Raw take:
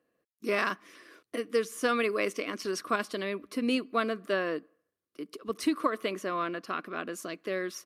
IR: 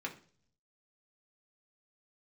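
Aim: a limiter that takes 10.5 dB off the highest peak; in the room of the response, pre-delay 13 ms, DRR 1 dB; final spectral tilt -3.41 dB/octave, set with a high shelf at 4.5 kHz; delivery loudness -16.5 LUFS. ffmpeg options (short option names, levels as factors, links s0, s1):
-filter_complex "[0:a]highshelf=f=4500:g=-5.5,alimiter=level_in=1.12:limit=0.0631:level=0:latency=1,volume=0.891,asplit=2[s0][s1];[1:a]atrim=start_sample=2205,adelay=13[s2];[s1][s2]afir=irnorm=-1:irlink=0,volume=0.75[s3];[s0][s3]amix=inputs=2:normalize=0,volume=7.08"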